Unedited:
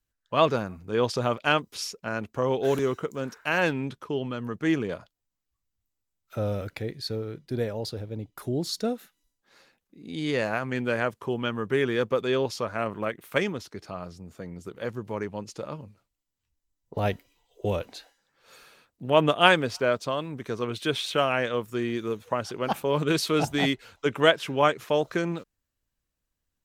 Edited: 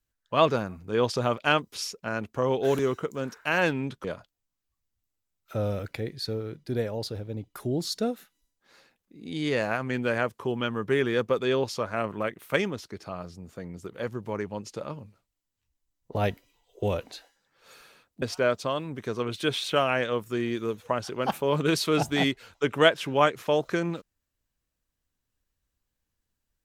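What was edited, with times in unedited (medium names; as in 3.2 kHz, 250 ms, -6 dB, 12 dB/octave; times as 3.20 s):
4.04–4.86 s: delete
19.04–19.64 s: delete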